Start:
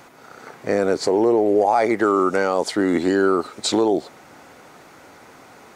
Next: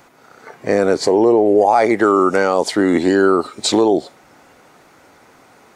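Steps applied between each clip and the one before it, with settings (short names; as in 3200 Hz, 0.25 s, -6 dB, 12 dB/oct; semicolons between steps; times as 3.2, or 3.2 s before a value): spectral noise reduction 7 dB; gain +4.5 dB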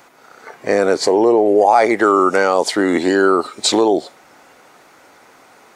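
low shelf 240 Hz -10.5 dB; gain +2.5 dB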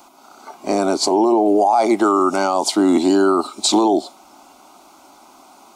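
fixed phaser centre 480 Hz, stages 6; limiter -10 dBFS, peak gain reduction 7.5 dB; gain +3.5 dB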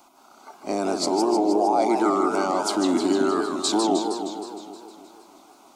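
warbling echo 0.156 s, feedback 67%, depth 217 cents, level -6 dB; gain -7.5 dB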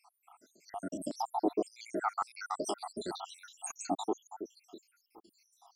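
random spectral dropouts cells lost 82%; stepped notch 2.7 Hz 290–3400 Hz; gain -4 dB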